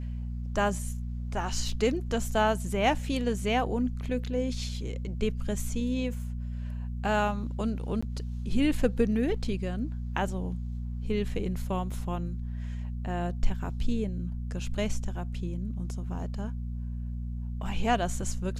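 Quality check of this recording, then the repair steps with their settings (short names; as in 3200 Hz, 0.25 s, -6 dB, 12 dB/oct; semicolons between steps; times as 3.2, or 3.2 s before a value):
hum 60 Hz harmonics 4 -34 dBFS
1.72 gap 4.1 ms
8.01–8.03 gap 15 ms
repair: de-hum 60 Hz, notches 4; interpolate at 1.72, 4.1 ms; interpolate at 8.01, 15 ms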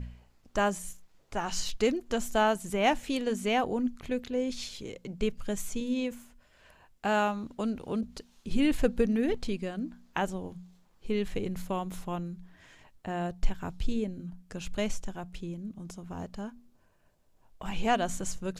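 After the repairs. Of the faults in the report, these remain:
none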